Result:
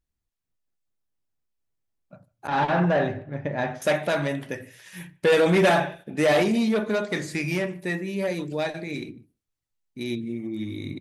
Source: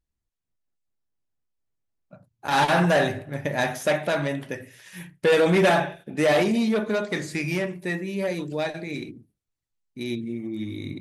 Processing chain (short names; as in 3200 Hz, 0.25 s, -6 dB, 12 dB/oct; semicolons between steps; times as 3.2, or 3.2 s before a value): 2.47–3.82 tape spacing loss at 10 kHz 29 dB; speakerphone echo 0.15 s, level -27 dB